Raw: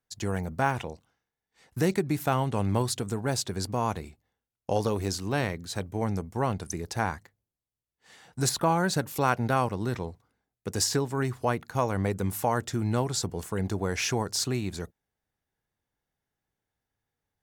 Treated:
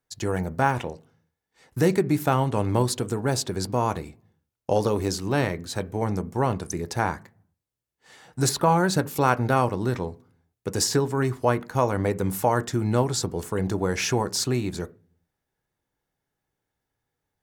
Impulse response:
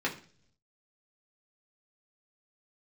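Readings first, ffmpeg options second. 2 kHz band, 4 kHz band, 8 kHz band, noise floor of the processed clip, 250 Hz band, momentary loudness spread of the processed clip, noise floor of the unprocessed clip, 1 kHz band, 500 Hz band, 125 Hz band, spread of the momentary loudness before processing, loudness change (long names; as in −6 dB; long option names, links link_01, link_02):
+3.0 dB, +2.5 dB, +2.5 dB, −84 dBFS, +4.0 dB, 9 LU, below −85 dBFS, +4.0 dB, +5.0 dB, +3.5 dB, 10 LU, +4.0 dB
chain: -filter_complex "[0:a]asplit=2[link_01][link_02];[1:a]atrim=start_sample=2205,asetrate=52920,aresample=44100,lowpass=2000[link_03];[link_02][link_03]afir=irnorm=-1:irlink=0,volume=-13dB[link_04];[link_01][link_04]amix=inputs=2:normalize=0,volume=2.5dB"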